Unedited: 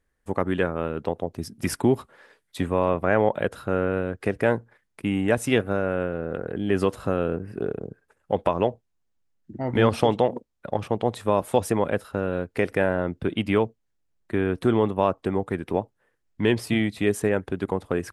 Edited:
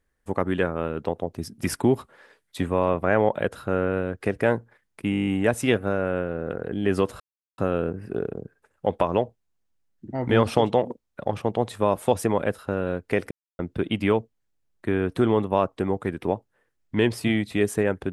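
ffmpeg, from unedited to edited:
ffmpeg -i in.wav -filter_complex "[0:a]asplit=12[link_01][link_02][link_03][link_04][link_05][link_06][link_07][link_08][link_09][link_10][link_11][link_12];[link_01]atrim=end=5.132[link_13];[link_02]atrim=start=5.108:end=5.132[link_14];[link_03]atrim=start=5.108:end=5.132[link_15];[link_04]atrim=start=5.108:end=5.132[link_16];[link_05]atrim=start=5.108:end=5.132[link_17];[link_06]atrim=start=5.108:end=5.132[link_18];[link_07]atrim=start=5.108:end=5.132[link_19];[link_08]atrim=start=5.108:end=5.132[link_20];[link_09]atrim=start=5.108:end=7.04,asetpts=PTS-STARTPTS,afade=type=out:start_time=1.928:duration=0.004:curve=hsin,apad=pad_dur=0.38[link_21];[link_10]atrim=start=7.04:end=12.77,asetpts=PTS-STARTPTS,afade=type=in:duration=0.004:curve=hsin,afade=type=out:start_time=5.726:duration=0.004:curve=hsin[link_22];[link_11]atrim=start=12.77:end=13.05,asetpts=PTS-STARTPTS,volume=0[link_23];[link_12]atrim=start=13.05,asetpts=PTS-STARTPTS,afade=type=in:duration=0.004:curve=hsin[link_24];[link_13][link_14]acrossfade=duration=0.004:curve1=hsin:curve2=hsin[link_25];[link_25][link_15]acrossfade=duration=0.004:curve1=hsin:curve2=hsin[link_26];[link_26][link_16]acrossfade=duration=0.004:curve1=hsin:curve2=hsin[link_27];[link_27][link_17]acrossfade=duration=0.004:curve1=hsin:curve2=hsin[link_28];[link_28][link_18]acrossfade=duration=0.004:curve1=hsin:curve2=hsin[link_29];[link_29][link_19]acrossfade=duration=0.004:curve1=hsin:curve2=hsin[link_30];[link_30][link_20]acrossfade=duration=0.004:curve1=hsin:curve2=hsin[link_31];[link_21][link_22][link_23][link_24]concat=n=4:v=0:a=1[link_32];[link_31][link_32]acrossfade=duration=0.004:curve1=hsin:curve2=hsin" out.wav

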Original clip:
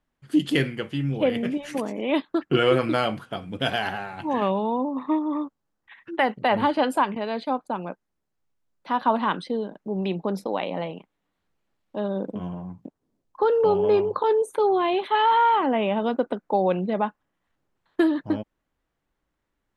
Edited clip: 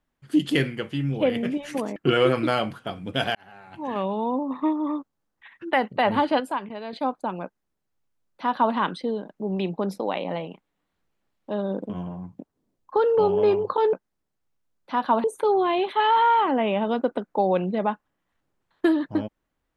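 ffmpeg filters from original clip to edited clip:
ffmpeg -i in.wav -filter_complex "[0:a]asplit=7[link_01][link_02][link_03][link_04][link_05][link_06][link_07];[link_01]atrim=end=1.962[link_08];[link_02]atrim=start=2.418:end=3.81,asetpts=PTS-STARTPTS,afade=type=out:start_time=1.388:duration=0.004:curve=hsin[link_09];[link_03]atrim=start=3.81:end=6.862,asetpts=PTS-STARTPTS,afade=type=in:duration=1[link_10];[link_04]atrim=start=6.858:end=7.392,asetpts=PTS-STARTPTS,volume=-6.5dB[link_11];[link_05]atrim=start=7.388:end=14.392[link_12];[link_06]atrim=start=7.898:end=9.212[link_13];[link_07]atrim=start=14.388[link_14];[link_09][link_10]concat=n=2:v=0:a=1[link_15];[link_08][link_15]acrossfade=duration=0.004:curve1=hsin:curve2=hsin[link_16];[link_16][link_11]acrossfade=duration=0.004:curve1=hsin:curve2=hsin[link_17];[link_17][link_12]acrossfade=duration=0.004:curve1=hsin:curve2=hsin[link_18];[link_18][link_13]acrossfade=duration=0.004:curve1=hsin:curve2=hsin[link_19];[link_19][link_14]acrossfade=duration=0.004:curve1=hsin:curve2=hsin" out.wav

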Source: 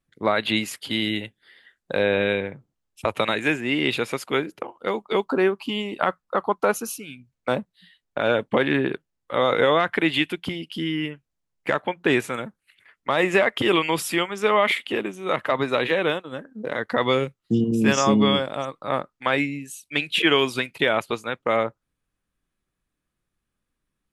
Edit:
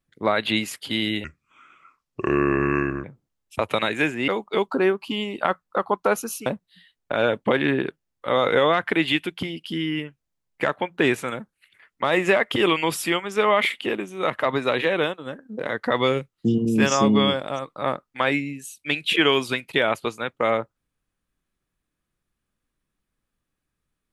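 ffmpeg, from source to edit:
ffmpeg -i in.wav -filter_complex "[0:a]asplit=5[link_01][link_02][link_03][link_04][link_05];[link_01]atrim=end=1.244[link_06];[link_02]atrim=start=1.24:end=2.5,asetpts=PTS-STARTPTS,asetrate=30870,aresample=44100[link_07];[link_03]atrim=start=2.496:end=3.742[link_08];[link_04]atrim=start=4.858:end=7.042[link_09];[link_05]atrim=start=7.518[link_10];[link_06][link_07]acrossfade=duration=0.004:curve1=hsin:curve2=hsin[link_11];[link_11][link_08]acrossfade=duration=0.004:curve1=hsin:curve2=hsin[link_12];[link_12][link_09]acrossfade=duration=0.004:curve1=hsin:curve2=hsin[link_13];[link_13][link_10]acrossfade=duration=0.004:curve1=hsin:curve2=hsin" out.wav

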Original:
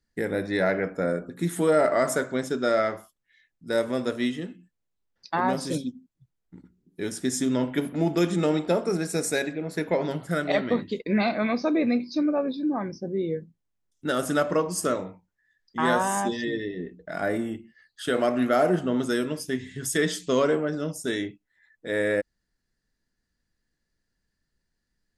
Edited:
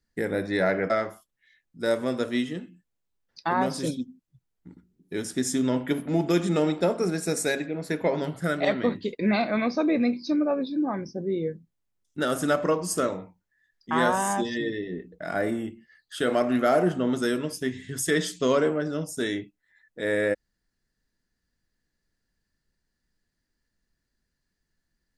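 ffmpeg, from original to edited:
ffmpeg -i in.wav -filter_complex "[0:a]asplit=2[link_01][link_02];[link_01]atrim=end=0.902[link_03];[link_02]atrim=start=2.768[link_04];[link_03][link_04]acrossfade=duration=0.004:curve1=hsin:curve2=hsin" out.wav

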